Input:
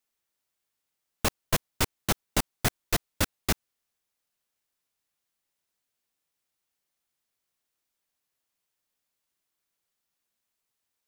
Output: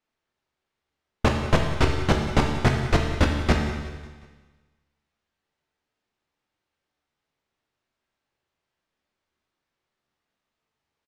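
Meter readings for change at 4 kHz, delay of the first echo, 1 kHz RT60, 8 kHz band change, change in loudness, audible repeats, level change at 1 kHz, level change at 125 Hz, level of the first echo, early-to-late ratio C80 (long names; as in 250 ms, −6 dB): +1.0 dB, 182 ms, 1.5 s, −7.5 dB, +6.0 dB, 4, +7.5 dB, +11.5 dB, −15.5 dB, 5.5 dB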